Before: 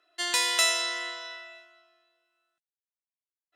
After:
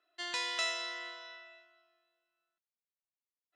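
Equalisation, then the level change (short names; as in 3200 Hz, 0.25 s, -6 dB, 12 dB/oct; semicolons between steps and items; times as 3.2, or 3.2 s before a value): LPF 6800 Hz 12 dB/oct; air absorption 56 m; -8.0 dB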